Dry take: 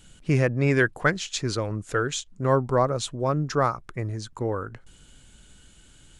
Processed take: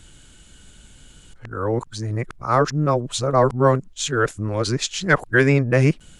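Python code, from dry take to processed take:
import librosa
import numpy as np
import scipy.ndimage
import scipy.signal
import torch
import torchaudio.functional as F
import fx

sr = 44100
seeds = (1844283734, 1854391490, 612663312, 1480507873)

y = x[::-1].copy()
y = y * 10.0 ** (5.0 / 20.0)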